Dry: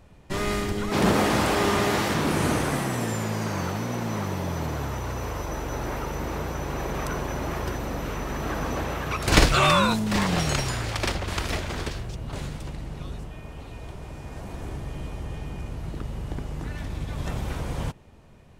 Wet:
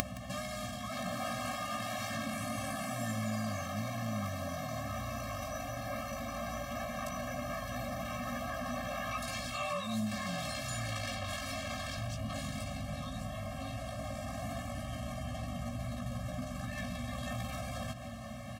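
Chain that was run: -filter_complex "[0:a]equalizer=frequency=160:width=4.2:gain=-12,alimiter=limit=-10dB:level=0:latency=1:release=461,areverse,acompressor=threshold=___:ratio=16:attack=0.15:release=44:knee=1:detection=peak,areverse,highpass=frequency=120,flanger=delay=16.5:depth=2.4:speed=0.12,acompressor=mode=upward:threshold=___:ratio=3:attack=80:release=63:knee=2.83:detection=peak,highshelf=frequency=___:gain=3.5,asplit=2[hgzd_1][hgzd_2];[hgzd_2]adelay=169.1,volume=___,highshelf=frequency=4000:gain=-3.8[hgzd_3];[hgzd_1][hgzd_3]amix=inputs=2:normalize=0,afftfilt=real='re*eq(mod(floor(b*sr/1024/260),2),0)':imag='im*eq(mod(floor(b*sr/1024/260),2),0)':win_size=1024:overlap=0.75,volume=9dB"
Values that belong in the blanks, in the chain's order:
-34dB, -49dB, 8500, -14dB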